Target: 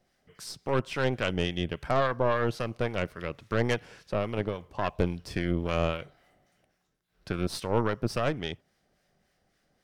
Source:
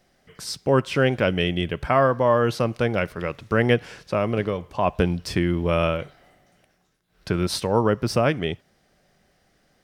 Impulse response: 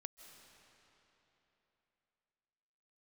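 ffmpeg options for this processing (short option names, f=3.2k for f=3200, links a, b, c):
-filter_complex "[0:a]aeval=exprs='0.531*(cos(1*acos(clip(val(0)/0.531,-1,1)))-cos(1*PI/2))+0.0944*(cos(6*acos(clip(val(0)/0.531,-1,1)))-cos(6*PI/2))+0.0211*(cos(8*acos(clip(val(0)/0.531,-1,1)))-cos(8*PI/2))':c=same,acrossover=split=1000[a][b];[a]aeval=exprs='val(0)*(1-0.5/2+0.5/2*cos(2*PI*3.6*n/s))':c=same[c];[b]aeval=exprs='val(0)*(1-0.5/2-0.5/2*cos(2*PI*3.6*n/s))':c=same[d];[c][d]amix=inputs=2:normalize=0,volume=-6dB"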